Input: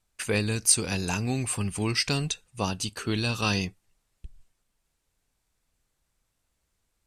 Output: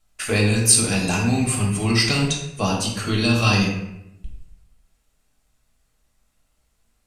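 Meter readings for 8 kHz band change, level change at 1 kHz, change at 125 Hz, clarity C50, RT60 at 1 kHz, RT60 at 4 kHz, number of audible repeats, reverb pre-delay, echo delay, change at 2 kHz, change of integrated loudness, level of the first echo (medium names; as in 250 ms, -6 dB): +6.5 dB, +7.5 dB, +9.0 dB, 3.5 dB, 0.80 s, 0.55 s, no echo, 3 ms, no echo, +8.0 dB, +7.5 dB, no echo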